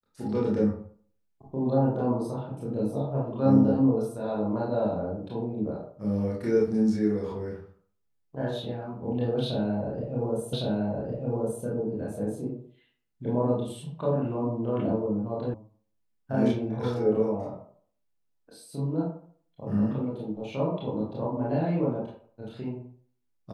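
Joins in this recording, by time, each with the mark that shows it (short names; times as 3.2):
10.53 repeat of the last 1.11 s
15.54 sound cut off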